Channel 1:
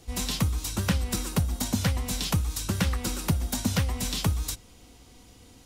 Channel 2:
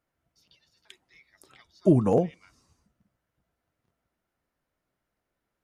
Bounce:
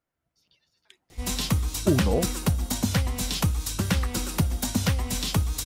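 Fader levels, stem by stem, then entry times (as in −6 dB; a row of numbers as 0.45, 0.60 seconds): +1.5, −3.5 decibels; 1.10, 0.00 seconds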